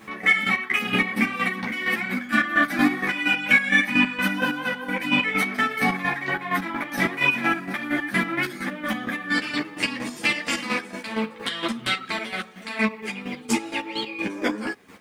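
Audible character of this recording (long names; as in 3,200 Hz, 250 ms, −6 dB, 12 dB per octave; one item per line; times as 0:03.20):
a quantiser's noise floor 10 bits, dither none
chopped level 4.3 Hz, depth 65%, duty 35%
a shimmering, thickened sound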